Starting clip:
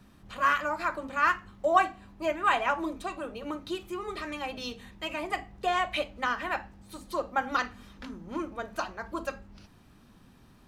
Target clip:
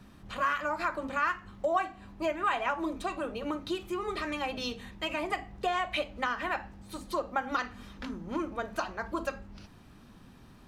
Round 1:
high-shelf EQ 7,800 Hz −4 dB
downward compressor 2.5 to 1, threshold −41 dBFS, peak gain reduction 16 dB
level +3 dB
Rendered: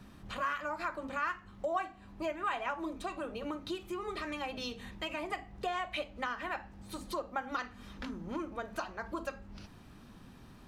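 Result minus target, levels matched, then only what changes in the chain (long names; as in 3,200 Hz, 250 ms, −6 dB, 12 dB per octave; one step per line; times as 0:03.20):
downward compressor: peak gain reduction +5.5 dB
change: downward compressor 2.5 to 1, threshold −32 dBFS, peak gain reduction 10.5 dB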